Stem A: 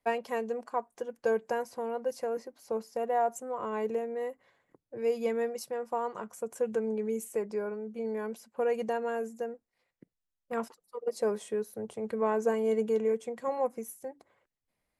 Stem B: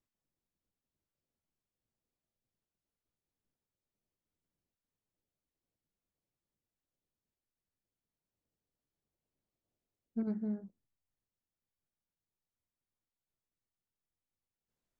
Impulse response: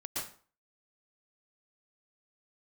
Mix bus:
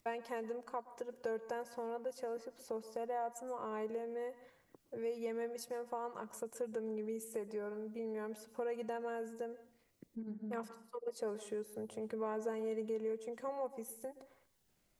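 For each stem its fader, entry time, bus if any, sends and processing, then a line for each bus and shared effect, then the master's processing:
-1.5 dB, 0.00 s, send -17.5 dB, none
-6.0 dB, 0.00 s, send -11.5 dB, upward compressor, threshold -56 dBFS; Shepard-style phaser falling 1.4 Hz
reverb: on, RT60 0.45 s, pre-delay 107 ms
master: compression 2:1, threshold -44 dBFS, peak gain reduction 11 dB

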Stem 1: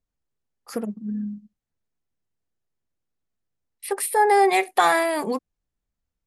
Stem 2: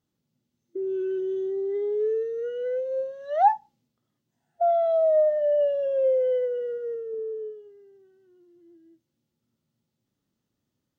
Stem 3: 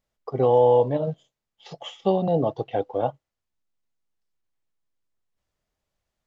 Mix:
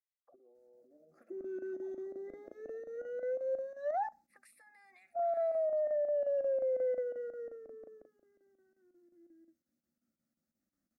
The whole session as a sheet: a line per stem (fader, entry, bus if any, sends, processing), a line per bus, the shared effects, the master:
-15.5 dB, 0.45 s, bus A, no send, peak limiter -16.5 dBFS, peak gain reduction 10 dB; auto-wah 460–2800 Hz, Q 2, up, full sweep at -25.5 dBFS
-3.5 dB, 0.55 s, no bus, no send, square tremolo 5.6 Hz, depth 65%, duty 80%
-10.5 dB, 0.00 s, bus A, no send, compression, threshold -21 dBFS, peak gain reduction 8 dB; auto-wah 390–2000 Hz, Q 13, down, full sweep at -30 dBFS; decay stretcher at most 66 dB/s
bus A: 0.0 dB, compression 8:1, threshold -55 dBFS, peak gain reduction 17.5 dB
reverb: none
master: static phaser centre 630 Hz, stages 8; peak limiter -28 dBFS, peak gain reduction 10 dB

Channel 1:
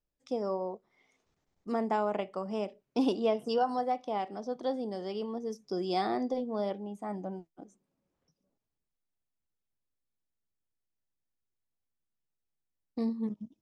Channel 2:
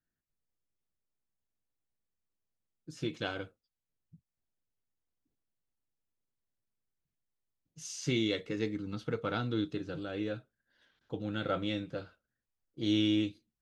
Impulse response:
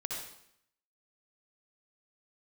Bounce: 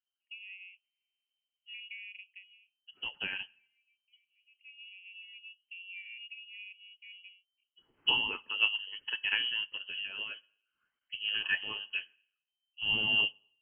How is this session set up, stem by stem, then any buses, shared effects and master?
-4.0 dB, 0.00 s, no send, steep low-pass 1 kHz 36 dB/octave; compression 2:1, threshold -34 dBFS, peak gain reduction 6.5 dB; auto duck -24 dB, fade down 0.50 s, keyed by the second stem
+2.0 dB, 0.00 s, send -18.5 dB, level-controlled noise filter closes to 2.4 kHz; tone controls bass -3 dB, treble -10 dB; phaser 1.5 Hz, delay 1.2 ms, feedback 48%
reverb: on, RT60 0.70 s, pre-delay 57 ms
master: frequency inversion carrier 3.1 kHz; upward expansion 1.5:1, over -49 dBFS

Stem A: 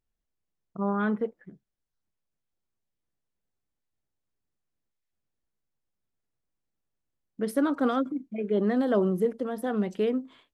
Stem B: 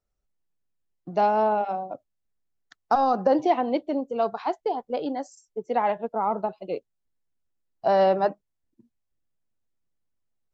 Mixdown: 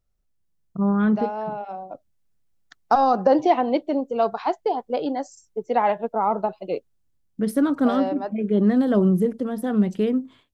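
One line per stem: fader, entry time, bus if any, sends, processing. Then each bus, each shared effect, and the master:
-3.0 dB, 0.00 s, no send, de-esser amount 75%; tone controls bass +12 dB, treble +4 dB
-0.5 dB, 0.00 s, no send, auto duck -11 dB, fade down 0.50 s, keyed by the first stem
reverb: none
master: level rider gain up to 4 dB

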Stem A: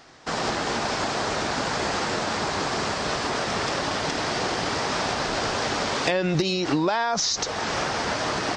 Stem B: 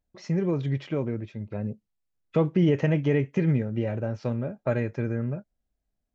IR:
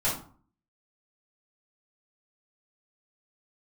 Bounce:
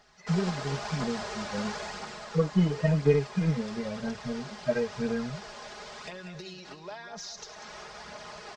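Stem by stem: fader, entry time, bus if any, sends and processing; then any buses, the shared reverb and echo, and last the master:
1.75 s -12.5 dB -> 2.34 s -19.5 dB, 0.00 s, no send, echo send -10.5 dB, comb 4.8 ms, depth 67%
-1.5 dB, 0.00 s, no send, no echo send, harmonic-percussive separation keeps harmonic; transient shaper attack +4 dB, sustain -3 dB; comb 4.4 ms, depth 91%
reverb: none
echo: feedback delay 192 ms, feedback 43%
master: peaking EQ 280 Hz -9 dB 0.64 oct; phaser 0.98 Hz, delay 3.9 ms, feedback 34%

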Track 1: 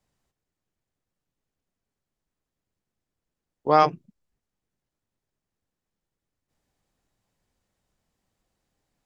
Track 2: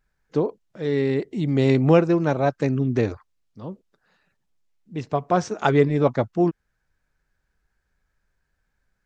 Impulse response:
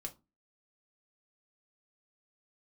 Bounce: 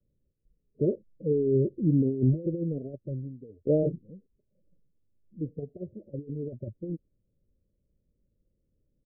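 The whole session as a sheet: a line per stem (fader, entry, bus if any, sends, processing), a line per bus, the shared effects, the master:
-0.5 dB, 0.00 s, no send, none
2.30 s -8 dB -> 2.93 s -19.5 dB -> 3.75 s -19.5 dB -> 4.06 s -6.5 dB -> 5.15 s -6.5 dB -> 5.84 s -19 dB, 0.45 s, no send, drifting ripple filter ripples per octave 1.4, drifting -1.4 Hz, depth 18 dB; compressor with a negative ratio -17 dBFS, ratio -0.5; auto duck -16 dB, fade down 0.50 s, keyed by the first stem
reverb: none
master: steep low-pass 590 Hz 96 dB/octave; bass shelf 160 Hz +7.5 dB

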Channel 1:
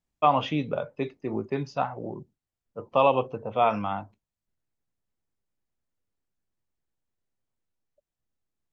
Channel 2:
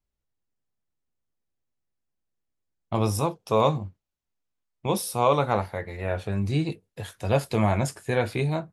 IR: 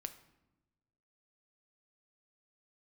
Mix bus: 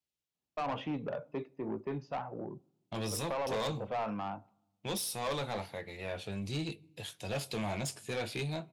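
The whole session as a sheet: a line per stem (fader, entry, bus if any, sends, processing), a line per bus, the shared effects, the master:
-5.5 dB, 0.35 s, send -12.5 dB, peak limiter -14.5 dBFS, peak gain reduction 6.5 dB; treble shelf 2.7 kHz -12 dB
-9.0 dB, 0.00 s, send -11 dB, resonant high shelf 2.2 kHz +8 dB, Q 1.5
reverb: on, RT60 1.0 s, pre-delay 6 ms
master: high-pass 120 Hz 12 dB/octave; treble shelf 8 kHz -5.5 dB; saturation -30 dBFS, distortion -9 dB

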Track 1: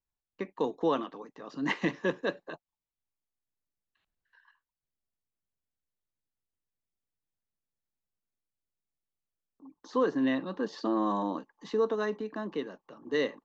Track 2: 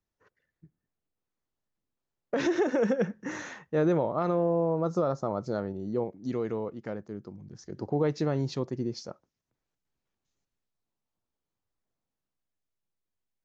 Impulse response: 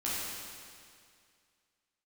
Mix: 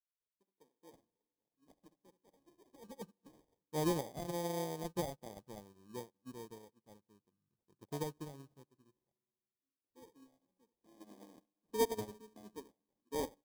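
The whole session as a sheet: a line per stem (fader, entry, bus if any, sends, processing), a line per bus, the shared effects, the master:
10.88 s -14.5 dB -> 11.55 s -4 dB, 0.00 s, send -16.5 dB, echo send -6.5 dB, none
-5.0 dB, 0.00 s, send -22.5 dB, no echo send, auto duck -16 dB, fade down 1.75 s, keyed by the first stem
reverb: on, RT60 2.2 s, pre-delay 10 ms
echo: delay 70 ms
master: sample-and-hold 32×; peaking EQ 2.1 kHz -10.5 dB 1.3 oct; upward expansion 2.5:1, over -50 dBFS

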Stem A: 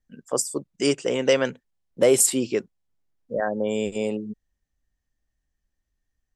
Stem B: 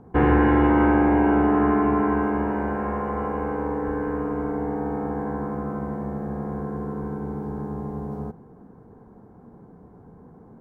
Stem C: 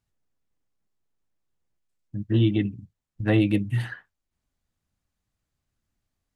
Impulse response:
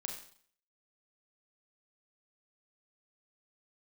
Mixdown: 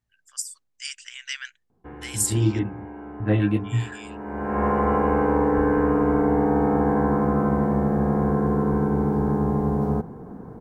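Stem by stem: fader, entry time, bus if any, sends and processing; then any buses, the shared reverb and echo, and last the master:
-4.0 dB, 0.00 s, no send, Chebyshev high-pass 1.6 kHz, order 4
-6.0 dB, 1.70 s, no send, level rider gain up to 15 dB; auto duck -20 dB, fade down 1.35 s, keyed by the third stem
+2.5 dB, 0.00 s, no send, chorus 1.9 Hz, delay 16.5 ms, depth 3.4 ms; treble shelf 2.5 kHz -10 dB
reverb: none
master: none

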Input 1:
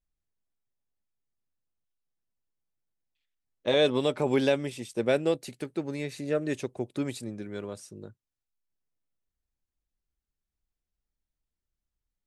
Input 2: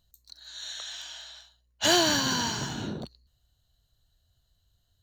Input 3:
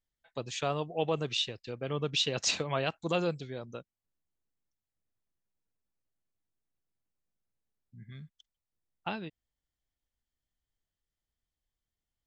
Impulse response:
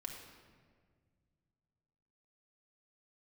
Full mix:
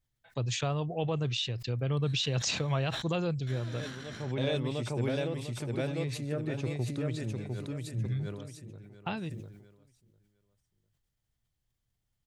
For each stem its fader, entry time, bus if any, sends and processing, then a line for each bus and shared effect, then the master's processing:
-4.0 dB, 0.00 s, bus A, no send, echo send -5.5 dB, peaking EQ 380 Hz -2.5 dB 2.7 oct; auto duck -22 dB, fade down 0.65 s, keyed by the third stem
2.74 s 0 dB -> 3.17 s -8.5 dB, 1.65 s, bus A, no send, no echo send, comb filter that takes the minimum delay 0.55 ms; tone controls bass -9 dB, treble -11 dB; level held to a coarse grid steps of 20 dB
+2.5 dB, 0.00 s, no bus, no send, no echo send, compression 1.5:1, threshold -42 dBFS, peak gain reduction 6.5 dB
bus A: 0.0 dB, low-pass that closes with the level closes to 2.9 kHz, closed at -30.5 dBFS; compression 3:1, threshold -35 dBFS, peak gain reduction 7.5 dB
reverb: none
echo: feedback delay 701 ms, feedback 31%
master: peaking EQ 120 Hz +14 dB 0.85 oct; decay stretcher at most 55 dB/s

